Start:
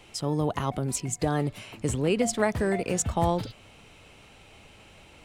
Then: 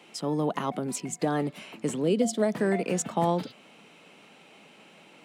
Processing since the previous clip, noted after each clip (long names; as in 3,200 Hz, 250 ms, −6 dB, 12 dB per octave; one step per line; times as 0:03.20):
gain on a spectral selection 0:02.04–0:02.52, 710–2,900 Hz −9 dB
Butterworth high-pass 170 Hz 36 dB per octave
bass and treble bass +3 dB, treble −4 dB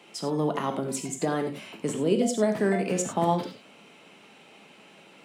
reverb whose tail is shaped and stops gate 120 ms flat, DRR 5 dB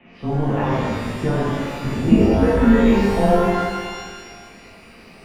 single-sideband voice off tune −160 Hz 160–3,000 Hz
parametric band 200 Hz +9 dB 0.35 octaves
reverb with rising layers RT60 1.6 s, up +12 semitones, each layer −8 dB, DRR −6.5 dB